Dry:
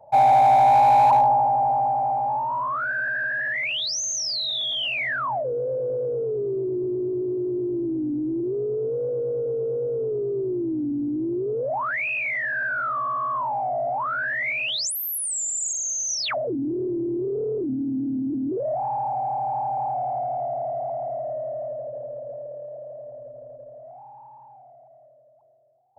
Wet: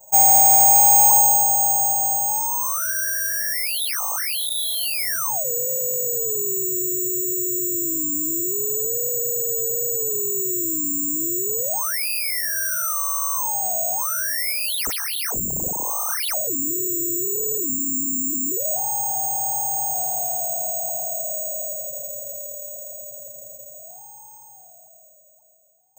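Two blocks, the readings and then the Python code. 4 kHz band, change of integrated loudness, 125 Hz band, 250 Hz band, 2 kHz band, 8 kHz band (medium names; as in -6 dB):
-0.5 dB, +5.0 dB, -4.0 dB, -5.5 dB, -5.0 dB, +12.5 dB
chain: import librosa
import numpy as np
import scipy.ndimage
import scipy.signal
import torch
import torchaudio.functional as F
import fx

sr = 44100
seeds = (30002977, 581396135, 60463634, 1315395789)

y = (np.kron(x[::6], np.eye(6)[0]) * 6)[:len(x)]
y = F.gain(torch.from_numpy(y), -5.5).numpy()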